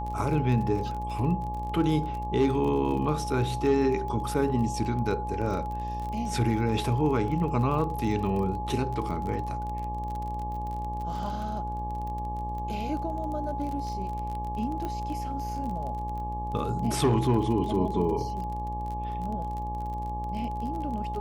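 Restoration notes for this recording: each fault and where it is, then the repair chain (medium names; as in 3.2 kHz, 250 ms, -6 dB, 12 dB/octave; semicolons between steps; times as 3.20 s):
buzz 60 Hz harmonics 19 -35 dBFS
crackle 29 per s -34 dBFS
whine 840 Hz -33 dBFS
14.85 s: pop -21 dBFS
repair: de-click; de-hum 60 Hz, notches 19; band-stop 840 Hz, Q 30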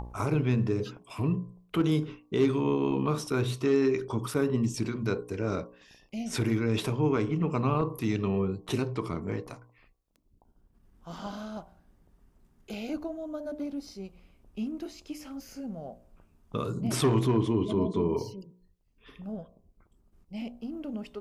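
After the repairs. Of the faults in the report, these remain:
nothing left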